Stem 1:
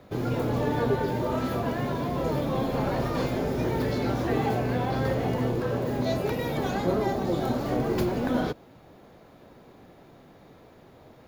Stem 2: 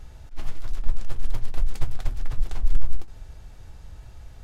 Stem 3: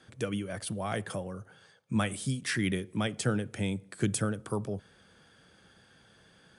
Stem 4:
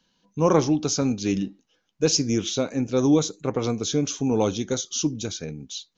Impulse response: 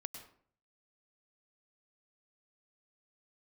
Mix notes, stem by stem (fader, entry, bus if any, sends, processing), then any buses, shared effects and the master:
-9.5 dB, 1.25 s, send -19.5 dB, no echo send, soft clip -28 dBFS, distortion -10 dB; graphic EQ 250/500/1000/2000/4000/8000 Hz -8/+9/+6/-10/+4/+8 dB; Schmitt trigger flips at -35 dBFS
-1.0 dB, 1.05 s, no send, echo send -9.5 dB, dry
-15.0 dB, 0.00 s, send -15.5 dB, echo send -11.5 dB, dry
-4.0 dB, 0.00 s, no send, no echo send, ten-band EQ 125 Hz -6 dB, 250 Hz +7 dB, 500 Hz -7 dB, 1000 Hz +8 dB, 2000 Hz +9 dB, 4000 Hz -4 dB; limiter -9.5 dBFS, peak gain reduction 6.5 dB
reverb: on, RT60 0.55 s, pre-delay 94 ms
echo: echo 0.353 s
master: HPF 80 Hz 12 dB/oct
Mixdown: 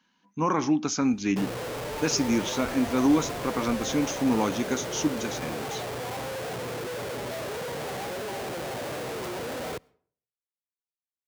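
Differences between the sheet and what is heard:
stem 1: missing soft clip -28 dBFS, distortion -10 dB; stem 2 -1.0 dB -> -8.0 dB; stem 3: muted

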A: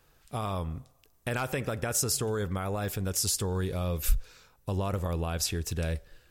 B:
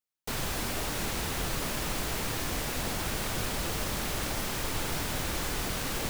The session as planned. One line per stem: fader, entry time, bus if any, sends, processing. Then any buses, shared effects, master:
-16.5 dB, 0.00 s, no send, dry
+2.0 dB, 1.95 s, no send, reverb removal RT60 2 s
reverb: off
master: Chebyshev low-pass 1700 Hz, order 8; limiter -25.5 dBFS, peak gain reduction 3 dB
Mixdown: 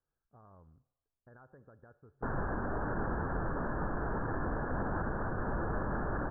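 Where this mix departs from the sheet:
stem A -16.5 dB -> -25.0 dB; stem B: missing reverb removal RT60 2 s

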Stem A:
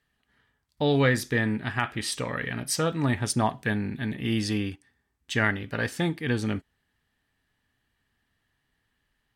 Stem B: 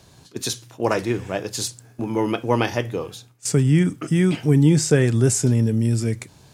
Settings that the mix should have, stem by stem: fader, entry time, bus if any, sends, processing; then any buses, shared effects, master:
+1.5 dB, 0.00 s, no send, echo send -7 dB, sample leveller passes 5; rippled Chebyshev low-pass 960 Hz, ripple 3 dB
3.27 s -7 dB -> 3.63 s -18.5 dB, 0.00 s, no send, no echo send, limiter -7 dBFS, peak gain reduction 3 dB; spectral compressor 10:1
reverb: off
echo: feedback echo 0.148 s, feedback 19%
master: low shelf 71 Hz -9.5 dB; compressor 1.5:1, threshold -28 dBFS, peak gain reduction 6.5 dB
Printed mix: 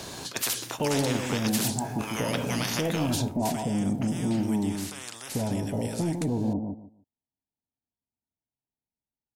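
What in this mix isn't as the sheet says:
stem A +1.5 dB -> -7.5 dB; stem B -7.0 dB -> +2.0 dB

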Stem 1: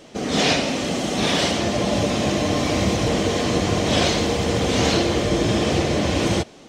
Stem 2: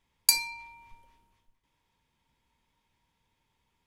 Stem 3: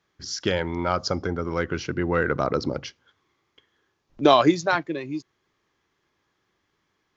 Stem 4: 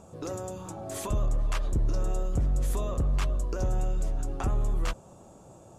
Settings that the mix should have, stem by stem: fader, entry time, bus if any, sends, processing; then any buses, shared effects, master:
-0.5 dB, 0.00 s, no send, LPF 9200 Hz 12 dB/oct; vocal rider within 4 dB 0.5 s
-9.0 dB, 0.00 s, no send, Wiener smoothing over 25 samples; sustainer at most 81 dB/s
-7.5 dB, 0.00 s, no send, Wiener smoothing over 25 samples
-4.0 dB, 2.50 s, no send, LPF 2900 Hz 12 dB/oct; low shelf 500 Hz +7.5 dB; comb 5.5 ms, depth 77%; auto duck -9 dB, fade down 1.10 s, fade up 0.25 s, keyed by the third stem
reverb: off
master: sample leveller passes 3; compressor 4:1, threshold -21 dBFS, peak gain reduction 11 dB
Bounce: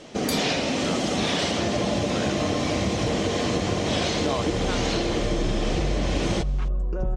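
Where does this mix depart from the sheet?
stem 4: entry 2.50 s -> 3.40 s; master: missing sample leveller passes 3

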